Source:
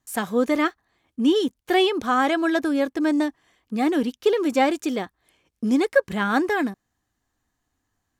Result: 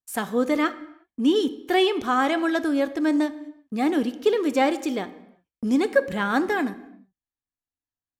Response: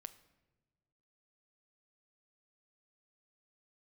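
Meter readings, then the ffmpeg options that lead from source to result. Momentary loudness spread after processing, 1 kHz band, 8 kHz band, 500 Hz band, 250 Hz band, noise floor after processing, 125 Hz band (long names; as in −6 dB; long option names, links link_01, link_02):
11 LU, −1.5 dB, −1.5 dB, −1.0 dB, −1.0 dB, below −85 dBFS, can't be measured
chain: -filter_complex "[0:a]agate=range=-23dB:threshold=-48dB:ratio=16:detection=peak[link_01];[1:a]atrim=start_sample=2205,afade=type=out:start_time=0.43:duration=0.01,atrim=end_sample=19404[link_02];[link_01][link_02]afir=irnorm=-1:irlink=0,volume=4.5dB"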